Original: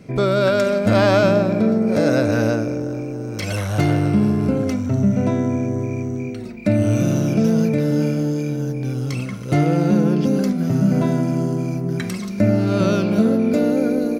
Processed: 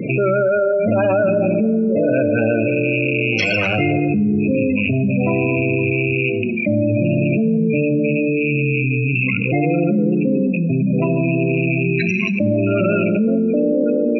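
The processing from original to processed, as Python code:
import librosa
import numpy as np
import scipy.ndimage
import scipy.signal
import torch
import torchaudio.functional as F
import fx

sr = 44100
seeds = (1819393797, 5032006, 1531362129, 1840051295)

y = fx.rattle_buzz(x, sr, strikes_db=-28.0, level_db=-21.0)
y = fx.peak_eq(y, sr, hz=2700.0, db=7.0, octaves=0.6)
y = 10.0 ** (-11.0 / 20.0) * np.tanh(y / 10.0 ** (-11.0 / 20.0))
y = scipy.signal.sosfilt(scipy.signal.butter(2, 97.0, 'highpass', fs=sr, output='sos'), y)
y = fx.hum_notches(y, sr, base_hz=50, count=5)
y = fx.spec_gate(y, sr, threshold_db=-15, keep='strong')
y = fx.low_shelf(y, sr, hz=130.0, db=-7.0)
y = fx.notch(y, sr, hz=3000.0, q=27.0)
y = fx.rev_plate(y, sr, seeds[0], rt60_s=1.4, hf_ratio=0.65, predelay_ms=0, drr_db=12.5)
y = fx.env_flatten(y, sr, amount_pct=70)
y = F.gain(torch.from_numpy(y), 1.5).numpy()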